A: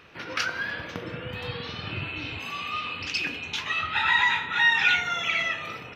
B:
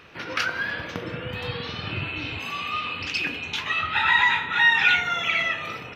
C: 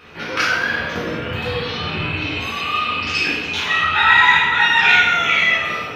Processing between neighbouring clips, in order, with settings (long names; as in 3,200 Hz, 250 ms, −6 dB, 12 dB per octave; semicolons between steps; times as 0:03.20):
dynamic equaliser 5,900 Hz, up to −5 dB, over −42 dBFS, Q 1.3; level +3 dB
dense smooth reverb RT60 0.9 s, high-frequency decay 0.95×, DRR −6.5 dB; level +1 dB